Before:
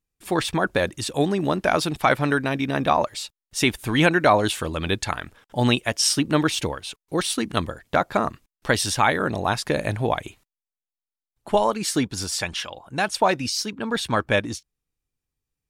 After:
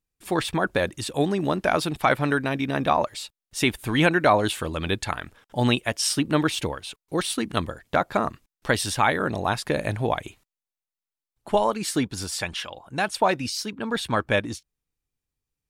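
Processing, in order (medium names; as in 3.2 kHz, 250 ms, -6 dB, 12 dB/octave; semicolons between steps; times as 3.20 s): dynamic bell 5.9 kHz, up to -4 dB, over -42 dBFS, Q 1.9; trim -1.5 dB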